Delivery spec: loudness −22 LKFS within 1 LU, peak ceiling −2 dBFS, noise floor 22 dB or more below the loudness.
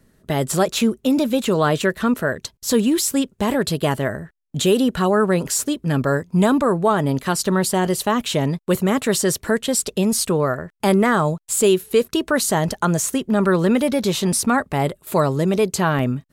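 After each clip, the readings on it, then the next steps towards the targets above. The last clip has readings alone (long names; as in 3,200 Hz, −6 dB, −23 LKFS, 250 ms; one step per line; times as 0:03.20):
number of dropouts 1; longest dropout 2.7 ms; integrated loudness −19.5 LKFS; sample peak −6.0 dBFS; target loudness −22.0 LKFS
→ repair the gap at 0:15.99, 2.7 ms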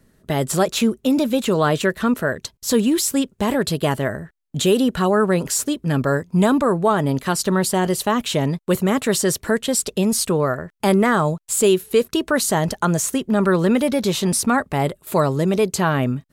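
number of dropouts 0; integrated loudness −19.5 LKFS; sample peak −6.0 dBFS; target loudness −22.0 LKFS
→ level −2.5 dB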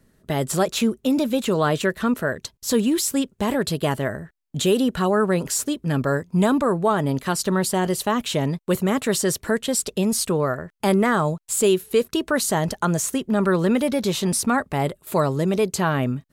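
integrated loudness −22.0 LKFS; sample peak −8.5 dBFS; background noise floor −65 dBFS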